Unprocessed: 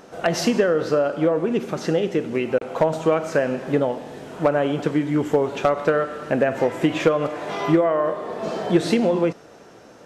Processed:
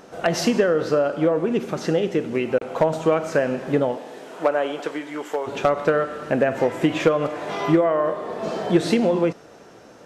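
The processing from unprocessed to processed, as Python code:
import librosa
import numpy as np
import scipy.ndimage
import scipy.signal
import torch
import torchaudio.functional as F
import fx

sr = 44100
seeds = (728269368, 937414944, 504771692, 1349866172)

y = fx.highpass(x, sr, hz=fx.line((3.96, 280.0), (5.46, 690.0)), slope=12, at=(3.96, 5.46), fade=0.02)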